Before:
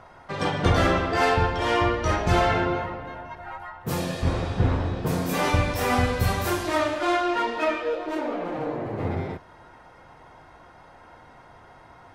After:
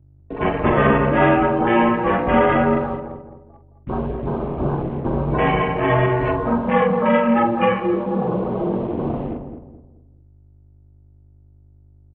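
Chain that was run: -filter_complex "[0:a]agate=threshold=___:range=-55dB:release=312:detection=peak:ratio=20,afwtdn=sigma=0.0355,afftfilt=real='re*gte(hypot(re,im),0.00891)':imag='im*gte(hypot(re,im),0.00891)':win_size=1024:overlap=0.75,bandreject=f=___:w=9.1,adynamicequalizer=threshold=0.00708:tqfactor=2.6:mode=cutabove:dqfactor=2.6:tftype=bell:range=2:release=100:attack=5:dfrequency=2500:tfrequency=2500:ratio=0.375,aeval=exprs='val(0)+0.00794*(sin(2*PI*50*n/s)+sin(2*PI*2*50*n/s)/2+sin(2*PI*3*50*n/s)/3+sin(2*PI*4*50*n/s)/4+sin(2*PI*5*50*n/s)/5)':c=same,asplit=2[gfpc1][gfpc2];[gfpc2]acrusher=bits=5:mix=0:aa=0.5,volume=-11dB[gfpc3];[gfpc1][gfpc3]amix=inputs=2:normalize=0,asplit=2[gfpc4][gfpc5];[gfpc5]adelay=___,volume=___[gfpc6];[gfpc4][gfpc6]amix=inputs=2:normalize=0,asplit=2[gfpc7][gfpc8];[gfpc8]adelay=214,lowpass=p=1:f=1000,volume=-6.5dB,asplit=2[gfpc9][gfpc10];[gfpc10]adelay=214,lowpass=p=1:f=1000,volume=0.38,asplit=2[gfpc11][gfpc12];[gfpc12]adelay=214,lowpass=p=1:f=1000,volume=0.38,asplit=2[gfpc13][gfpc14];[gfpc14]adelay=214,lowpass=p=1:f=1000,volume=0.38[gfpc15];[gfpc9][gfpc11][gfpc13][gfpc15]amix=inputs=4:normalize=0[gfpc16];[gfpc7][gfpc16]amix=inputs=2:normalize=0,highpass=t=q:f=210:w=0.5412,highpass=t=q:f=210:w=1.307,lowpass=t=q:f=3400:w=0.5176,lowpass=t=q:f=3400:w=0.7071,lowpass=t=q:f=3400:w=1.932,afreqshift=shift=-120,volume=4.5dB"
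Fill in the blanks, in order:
-36dB, 1500, 45, -10dB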